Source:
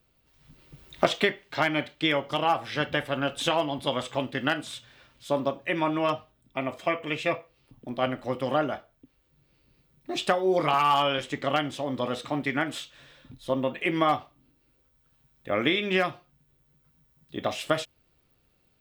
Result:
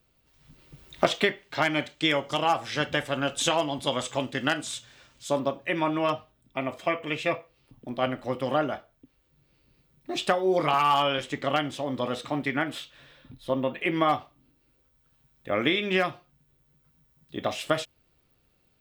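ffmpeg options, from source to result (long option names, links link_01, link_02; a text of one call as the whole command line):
ffmpeg -i in.wav -af "asetnsamples=nb_out_samples=441:pad=0,asendcmd='1.65 equalizer g 10.5;5.39 equalizer g 0.5;12.48 equalizer g -5.5;14.1 equalizer g 0.5',equalizer=frequency=7000:width_type=o:width=0.87:gain=2" out.wav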